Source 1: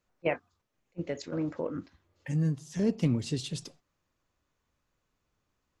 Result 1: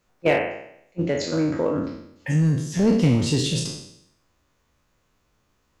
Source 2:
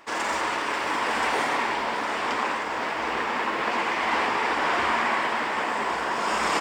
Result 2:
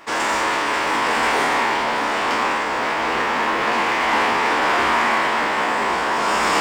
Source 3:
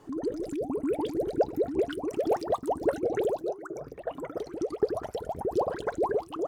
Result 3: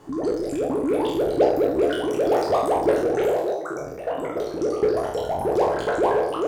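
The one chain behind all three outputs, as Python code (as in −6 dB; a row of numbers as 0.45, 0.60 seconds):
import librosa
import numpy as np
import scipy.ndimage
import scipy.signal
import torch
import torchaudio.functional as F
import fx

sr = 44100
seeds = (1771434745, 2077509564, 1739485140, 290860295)

p1 = fx.spec_trails(x, sr, decay_s=0.74)
p2 = 10.0 ** (-25.5 / 20.0) * (np.abs((p1 / 10.0 ** (-25.5 / 20.0) + 3.0) % 4.0 - 2.0) - 1.0)
p3 = p1 + (p2 * 10.0 ** (-11.0 / 20.0))
y = librosa.util.normalize(p3) * 10.0 ** (-6 / 20.0)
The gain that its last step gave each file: +7.0, +3.5, +2.5 decibels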